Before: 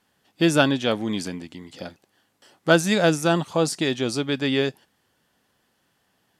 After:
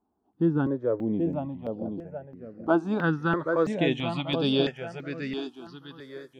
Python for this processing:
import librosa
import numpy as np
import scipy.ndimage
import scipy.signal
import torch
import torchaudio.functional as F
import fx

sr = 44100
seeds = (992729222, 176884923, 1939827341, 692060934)

y = fx.filter_sweep_lowpass(x, sr, from_hz=620.0, to_hz=12000.0, start_s=2.01, end_s=5.83, q=1.1)
y = fx.echo_feedback(y, sr, ms=782, feedback_pct=37, wet_db=-7)
y = fx.phaser_held(y, sr, hz=3.0, low_hz=530.0, high_hz=6800.0)
y = F.gain(torch.from_numpy(y), -1.5).numpy()